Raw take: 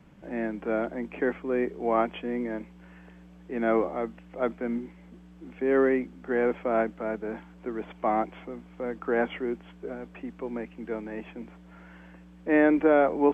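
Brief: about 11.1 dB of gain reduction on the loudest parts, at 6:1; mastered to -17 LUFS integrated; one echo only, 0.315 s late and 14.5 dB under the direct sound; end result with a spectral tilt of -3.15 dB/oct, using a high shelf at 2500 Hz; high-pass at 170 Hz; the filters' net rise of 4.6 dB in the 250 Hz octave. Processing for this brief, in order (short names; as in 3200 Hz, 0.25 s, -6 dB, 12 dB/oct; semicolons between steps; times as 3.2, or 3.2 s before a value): HPF 170 Hz; bell 250 Hz +6.5 dB; high shelf 2500 Hz -4 dB; compressor 6:1, threshold -26 dBFS; echo 0.315 s -14.5 dB; gain +15.5 dB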